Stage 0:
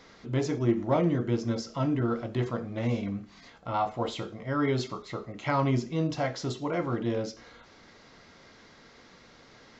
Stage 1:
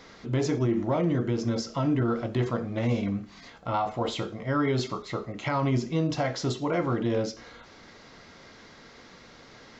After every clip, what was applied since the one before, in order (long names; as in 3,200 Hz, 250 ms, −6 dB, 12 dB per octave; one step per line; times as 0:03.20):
brickwall limiter −21.5 dBFS, peak gain reduction 7 dB
level +4 dB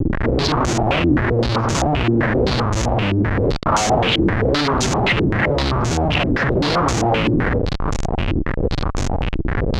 sub-octave generator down 1 octave, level +2 dB
comparator with hysteresis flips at −42 dBFS
low-pass on a step sequencer 7.7 Hz 320–6,600 Hz
level +7.5 dB